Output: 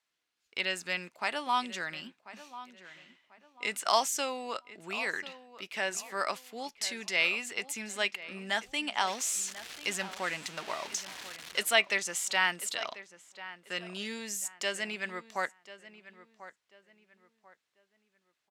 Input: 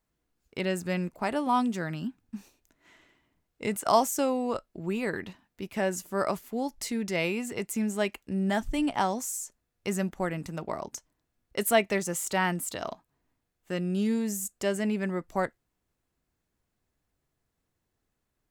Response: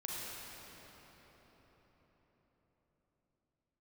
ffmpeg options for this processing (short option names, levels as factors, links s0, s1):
-filter_complex "[0:a]asettb=1/sr,asplit=3[s0][s1][s2];[s0]atrim=end=9.074[s3];[s1]atrim=start=9.07:end=11.63,asetpts=PTS-STARTPTS,afade=t=in:d=0.004:c=qsin,afade=t=out:st=2.556:d=0.004:c=qsin,aeval=exprs='val(0)+0.5*0.0158*sgn(val(0))':c=same[s4];[s2]atrim=start=11.626[s5];[s3][s4]acrossfade=d=0.004:c1=hsin:c2=qsin[s6];[s6][s5]acrossfade=d=0.004:c1=qsin:c2=hsin,bandpass=f=3300:t=q:w=0.93:csg=0,asplit=2[s7][s8];[s8]adelay=1041,lowpass=f=2600:p=1,volume=0.178,asplit=2[s9][s10];[s10]adelay=1041,lowpass=f=2600:p=1,volume=0.33,asplit=2[s11][s12];[s12]adelay=1041,lowpass=f=2600:p=1,volume=0.33[s13];[s7][s9][s11][s13]amix=inputs=4:normalize=0,volume=2.24"